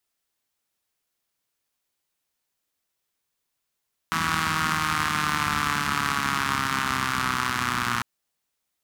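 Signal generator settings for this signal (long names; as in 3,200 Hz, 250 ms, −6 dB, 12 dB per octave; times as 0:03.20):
pulse-train model of a four-cylinder engine, changing speed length 3.90 s, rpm 4,900, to 3,600, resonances 100/190/1,200 Hz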